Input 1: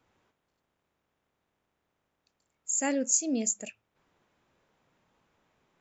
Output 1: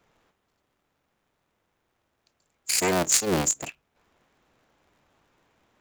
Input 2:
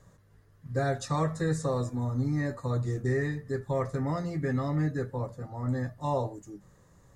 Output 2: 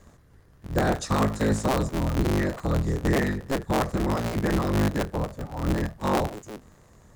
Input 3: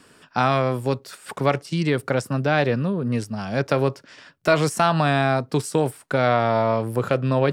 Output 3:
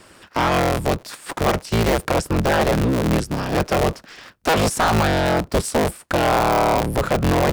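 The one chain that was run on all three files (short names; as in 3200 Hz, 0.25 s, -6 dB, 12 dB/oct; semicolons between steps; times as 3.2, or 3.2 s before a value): cycle switcher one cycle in 3, inverted; hard clip -18 dBFS; gain +5 dB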